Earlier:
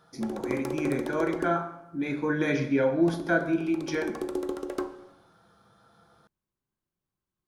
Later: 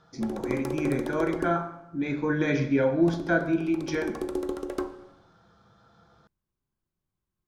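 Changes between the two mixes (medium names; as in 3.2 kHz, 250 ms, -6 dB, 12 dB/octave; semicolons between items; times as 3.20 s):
speech: add steep low-pass 7.4 kHz 36 dB/octave; master: add bass shelf 110 Hz +9 dB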